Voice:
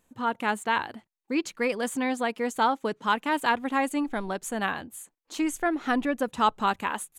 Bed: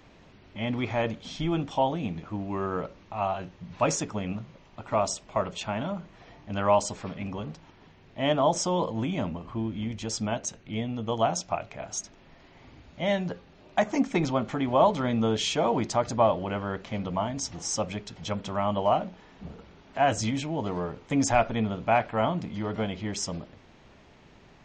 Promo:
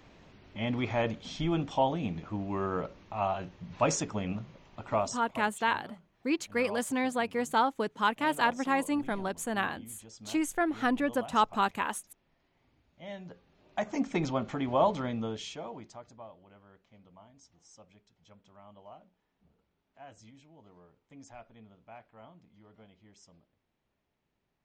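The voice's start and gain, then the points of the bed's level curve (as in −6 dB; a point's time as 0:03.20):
4.95 s, −2.5 dB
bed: 0:04.92 −2 dB
0:05.55 −19 dB
0:12.90 −19 dB
0:14.10 −4.5 dB
0:14.94 −4.5 dB
0:16.29 −27 dB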